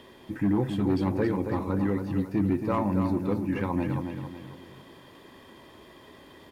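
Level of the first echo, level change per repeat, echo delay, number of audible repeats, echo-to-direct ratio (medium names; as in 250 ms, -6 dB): -7.0 dB, -7.5 dB, 274 ms, 4, -6.0 dB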